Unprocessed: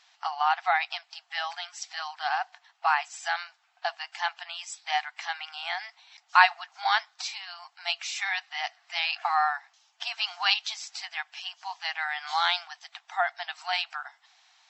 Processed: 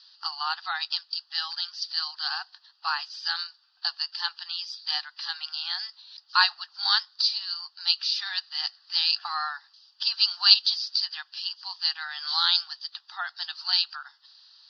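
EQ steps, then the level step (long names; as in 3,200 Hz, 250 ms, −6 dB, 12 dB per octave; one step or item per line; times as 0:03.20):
high-pass filter 950 Hz 12 dB per octave
low-pass with resonance 4,700 Hz, resonance Q 13
phaser with its sweep stopped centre 2,200 Hz, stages 6
−2.0 dB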